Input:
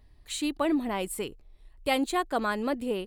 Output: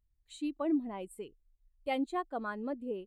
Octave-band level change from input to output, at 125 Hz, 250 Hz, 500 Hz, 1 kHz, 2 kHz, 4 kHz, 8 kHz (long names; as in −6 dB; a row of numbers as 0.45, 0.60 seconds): below −10 dB, −5.0 dB, −7.5 dB, −8.0 dB, −10.5 dB, −14.5 dB, −18.5 dB